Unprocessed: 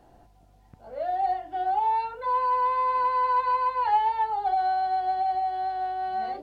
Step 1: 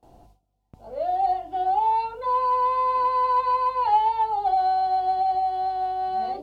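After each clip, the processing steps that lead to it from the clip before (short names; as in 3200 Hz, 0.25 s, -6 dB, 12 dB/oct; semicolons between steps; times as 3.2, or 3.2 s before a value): gate with hold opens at -48 dBFS; bell 1700 Hz -11.5 dB 0.64 oct; gain +4 dB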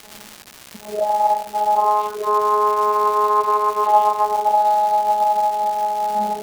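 vocoder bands 16, saw 210 Hz; crackle 440/s -31 dBFS; gain +6.5 dB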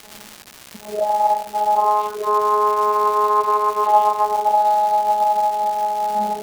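nothing audible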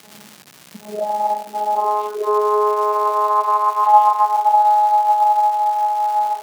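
high-pass sweep 150 Hz -> 920 Hz, 0.62–4.02; gain -3 dB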